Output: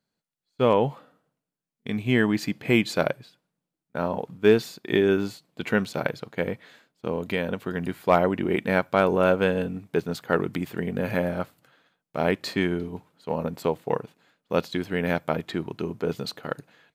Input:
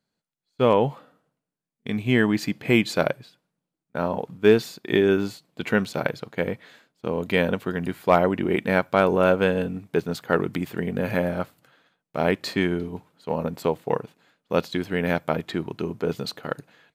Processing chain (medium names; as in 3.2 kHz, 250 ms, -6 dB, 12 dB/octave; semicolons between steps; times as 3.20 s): 7.15–7.71 s: compression 2:1, threshold -24 dBFS, peak gain reduction 5 dB; trim -1.5 dB